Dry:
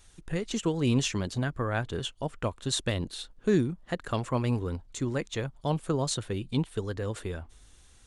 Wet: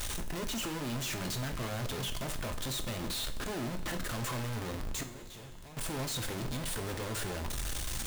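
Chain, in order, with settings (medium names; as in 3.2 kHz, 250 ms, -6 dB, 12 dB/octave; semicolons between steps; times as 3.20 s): one-bit comparator; 5.03–5.77 s: feedback comb 180 Hz, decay 1.5 s, mix 80%; two-slope reverb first 0.42 s, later 3.9 s, DRR 5.5 dB; trim -6 dB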